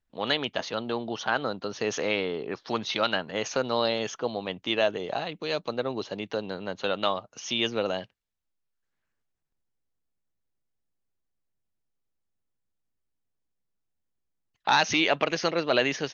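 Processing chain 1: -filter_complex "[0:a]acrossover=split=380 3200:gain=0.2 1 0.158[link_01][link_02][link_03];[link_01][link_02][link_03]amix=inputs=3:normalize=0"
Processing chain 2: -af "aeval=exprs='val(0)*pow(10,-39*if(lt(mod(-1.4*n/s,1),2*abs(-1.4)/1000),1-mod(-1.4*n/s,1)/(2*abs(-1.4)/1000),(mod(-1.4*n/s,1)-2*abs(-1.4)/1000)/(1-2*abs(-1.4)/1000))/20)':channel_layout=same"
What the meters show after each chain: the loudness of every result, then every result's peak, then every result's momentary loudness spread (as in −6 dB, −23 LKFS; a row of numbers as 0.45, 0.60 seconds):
−30.5, −36.0 LKFS; −11.5, −11.0 dBFS; 10, 17 LU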